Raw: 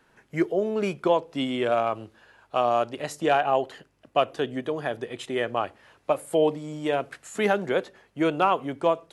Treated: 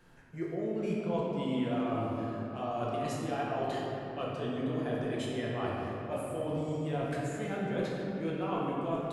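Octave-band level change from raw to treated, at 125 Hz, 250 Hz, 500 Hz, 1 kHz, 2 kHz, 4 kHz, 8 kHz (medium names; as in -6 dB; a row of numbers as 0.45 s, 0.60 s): +2.0 dB, -3.5 dB, -9.5 dB, -10.5 dB, -10.5 dB, -10.0 dB, -7.0 dB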